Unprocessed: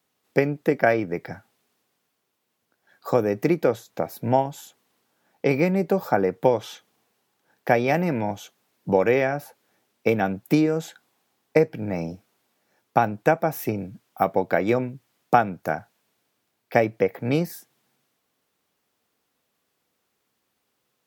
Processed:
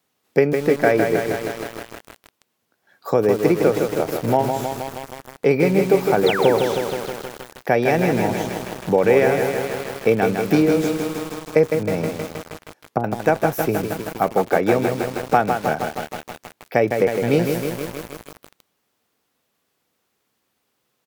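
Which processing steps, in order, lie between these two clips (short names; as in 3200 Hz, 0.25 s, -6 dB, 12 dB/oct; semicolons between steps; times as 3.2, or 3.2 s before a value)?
6.26–6.54 painted sound fall 210–4600 Hz -27 dBFS; in parallel at -2 dB: limiter -11.5 dBFS, peak gain reduction 9 dB; 11.99–13.04 on the sum: treble ducked by the level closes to 450 Hz, closed at -15 dBFS; on a send: echo 0.174 s -23.5 dB; on the sum: dynamic EQ 420 Hz, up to +6 dB, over -33 dBFS, Q 5.6; lo-fi delay 0.158 s, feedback 80%, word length 5-bit, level -5 dB; gain -2.5 dB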